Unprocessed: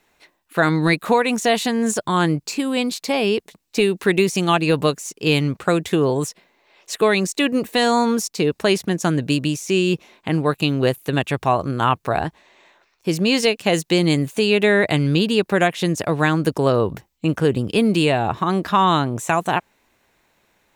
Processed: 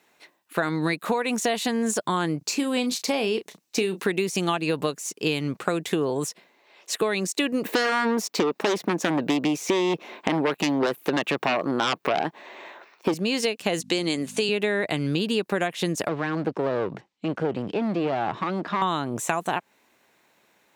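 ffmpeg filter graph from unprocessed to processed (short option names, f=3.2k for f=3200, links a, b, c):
-filter_complex "[0:a]asettb=1/sr,asplit=3[a][b][c];[a]atrim=end=2.384[d];[b]atrim=start=2.38:end=4,asetpts=PTS-STARTPTS,afade=t=in:d=0.004:c=qsin,afade=t=out:st=1.616:d=0.004:c=qsin,deesser=0.3,equalizer=f=6k:t=o:w=0.3:g=4.5,asplit=2[e][f];[f]adelay=32,volume=-12dB[g];[e][g]amix=inputs=2:normalize=0,atrim=end_sample=71442[h];[c]atrim=start=3.996[i];[d][h]acrossfade=d=0.004:c1=hsin:c2=qsin[j];[j][i]acrossfade=d=0.004:c1=qsin:c2=hsin,asettb=1/sr,asplit=3[k][l][m];[k]atrim=end=7.654[n];[l]atrim=start=7.65:end=13.14,asetpts=PTS-STARTPTS,afade=t=in:d=0.004:c=qsin,afade=t=out:st=5.486:d=0.004:c=qsin,equalizer=f=9.2k:w=0.44:g=-14,aeval=exprs='0.473*sin(PI/2*2.82*val(0)/0.473)':c=same,highpass=240[o];[m]atrim=start=13.136[p];[n][o]acrossfade=d=0.004:c1=hsin:c2=qsin[q];[q][p]acrossfade=d=0.004:c1=qsin:c2=hsin,asettb=1/sr,asplit=3[r][s][t];[r]atrim=end=13.804[u];[s]atrim=start=13.8:end=14.49,asetpts=PTS-STARTPTS,afade=t=in:d=0.004:c=qsin,afade=t=out:st=0.686:d=0.004:c=qsin,aemphasis=mode=production:type=cd,aeval=exprs='val(0)+0.0316*(sin(2*PI*50*n/s)+sin(2*PI*2*50*n/s)/2+sin(2*PI*3*50*n/s)/3+sin(2*PI*4*50*n/s)/4+sin(2*PI*5*50*n/s)/5)':c=same,highpass=210,lowpass=7.6k[v];[t]atrim=start=14.486[w];[u][v]acrossfade=d=0.004:c1=hsin:c2=qsin[x];[x][w]acrossfade=d=0.004:c1=qsin:c2=hsin,asettb=1/sr,asplit=3[y][z][aa];[y]atrim=end=16.084[ab];[z]atrim=start=16.08:end=18.82,asetpts=PTS-STARTPTS,afade=t=in:d=0.004:c=qsin,afade=t=out:st=2.736:d=0.004:c=qsin,deesser=1,aeval=exprs='clip(val(0),-1,0.0447)':c=same,highpass=100,lowpass=4.5k[ac];[aa]atrim=start=18.816[ad];[ab][ac]acrossfade=d=0.004:c1=hsin:c2=qsin[ae];[ae][ad]acrossfade=d=0.004:c1=qsin:c2=hsin,highpass=170,acompressor=threshold=-21dB:ratio=6"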